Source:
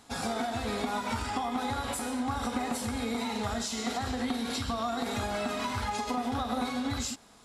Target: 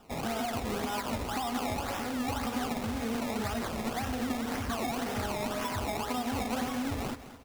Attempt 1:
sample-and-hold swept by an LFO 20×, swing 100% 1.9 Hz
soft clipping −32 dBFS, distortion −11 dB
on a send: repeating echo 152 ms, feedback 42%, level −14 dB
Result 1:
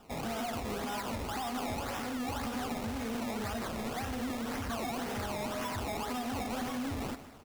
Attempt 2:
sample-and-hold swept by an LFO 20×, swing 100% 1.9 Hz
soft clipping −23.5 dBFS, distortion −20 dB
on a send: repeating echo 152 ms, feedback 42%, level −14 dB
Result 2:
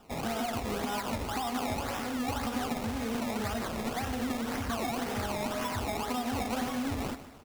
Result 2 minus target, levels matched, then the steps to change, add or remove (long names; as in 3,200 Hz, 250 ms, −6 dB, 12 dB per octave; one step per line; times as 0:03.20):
echo 60 ms early
change: repeating echo 212 ms, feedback 42%, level −14 dB